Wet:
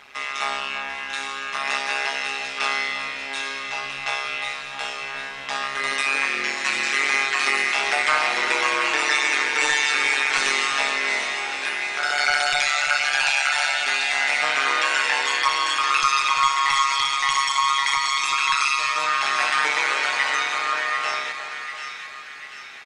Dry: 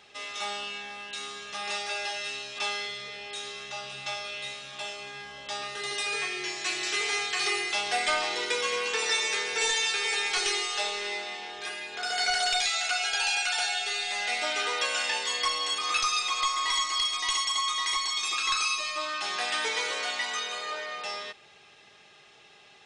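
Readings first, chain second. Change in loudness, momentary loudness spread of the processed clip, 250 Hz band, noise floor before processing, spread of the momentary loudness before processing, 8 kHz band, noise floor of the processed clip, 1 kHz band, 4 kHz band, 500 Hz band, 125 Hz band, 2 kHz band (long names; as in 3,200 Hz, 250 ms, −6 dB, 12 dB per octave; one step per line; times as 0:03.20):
+7.0 dB, 10 LU, +7.0 dB, −55 dBFS, 11 LU, +2.5 dB, −35 dBFS, +9.5 dB, +3.5 dB, +3.0 dB, can't be measured, +10.0 dB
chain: flat-topped bell 1,500 Hz +8.5 dB
in parallel at +2 dB: brickwall limiter −17.5 dBFS, peak gain reduction 8.5 dB
on the sum: amplitude modulation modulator 140 Hz, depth 90%
bit-depth reduction 12 bits, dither triangular
on a send: echo with a time of its own for lows and highs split 1,400 Hz, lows 340 ms, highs 743 ms, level −8 dB
on the sum: downsampling to 32,000 Hz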